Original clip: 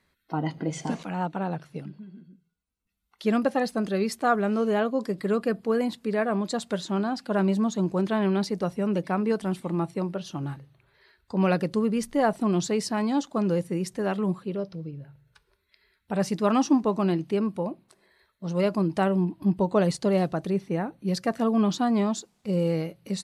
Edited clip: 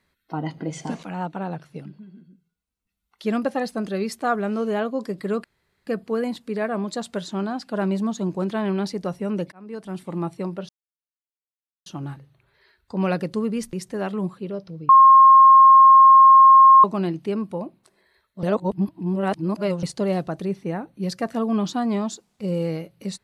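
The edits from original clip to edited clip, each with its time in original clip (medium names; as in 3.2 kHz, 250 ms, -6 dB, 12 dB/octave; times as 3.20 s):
5.44 s: insert room tone 0.43 s
9.09–9.73 s: fade in
10.26 s: insert silence 1.17 s
12.13–13.78 s: delete
14.94–16.89 s: bleep 1.07 kHz -7 dBFS
18.48–19.88 s: reverse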